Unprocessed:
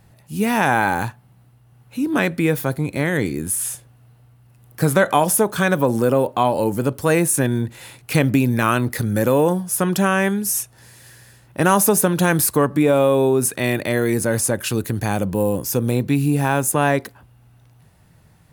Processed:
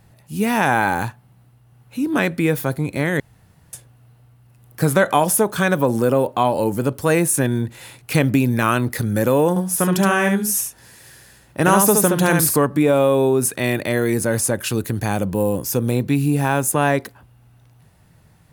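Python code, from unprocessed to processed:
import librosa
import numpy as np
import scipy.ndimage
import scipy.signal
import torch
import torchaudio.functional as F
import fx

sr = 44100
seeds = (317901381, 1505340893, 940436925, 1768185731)

y = fx.echo_single(x, sr, ms=71, db=-4.5, at=(9.49, 12.6))
y = fx.edit(y, sr, fx.room_tone_fill(start_s=3.2, length_s=0.53), tone=tone)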